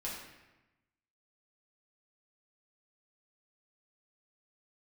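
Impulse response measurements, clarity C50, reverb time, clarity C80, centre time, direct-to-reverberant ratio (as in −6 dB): 2.0 dB, 1.0 s, 4.5 dB, 58 ms, −6.5 dB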